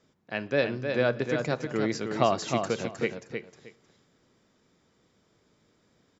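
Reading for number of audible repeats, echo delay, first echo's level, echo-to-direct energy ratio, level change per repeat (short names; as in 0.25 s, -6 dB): 2, 0.311 s, -6.0 dB, -6.0 dB, -14.0 dB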